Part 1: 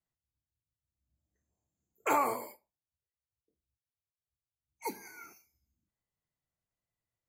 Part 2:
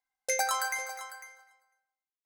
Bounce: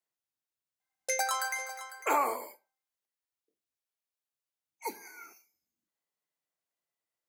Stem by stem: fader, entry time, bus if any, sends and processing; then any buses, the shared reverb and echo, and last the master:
+1.0 dB, 0.00 s, no send, none
-1.5 dB, 0.80 s, no send, none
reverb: none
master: high-pass 340 Hz 12 dB/octave

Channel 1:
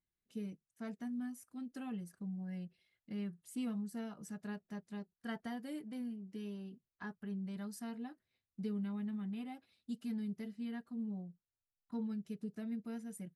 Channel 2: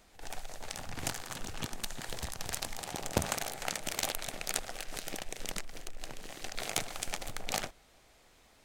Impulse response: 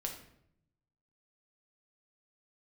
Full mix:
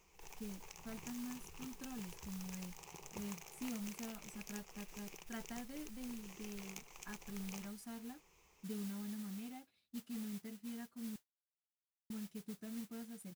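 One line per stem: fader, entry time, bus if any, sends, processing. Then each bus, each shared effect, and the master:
-5.0 dB, 0.05 s, muted 11.16–12.10 s, no send, none
-9.0 dB, 0.00 s, no send, rippled EQ curve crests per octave 0.76, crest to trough 13 dB; compression 2.5:1, threshold -44 dBFS, peak gain reduction 15 dB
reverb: none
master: modulation noise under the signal 12 dB

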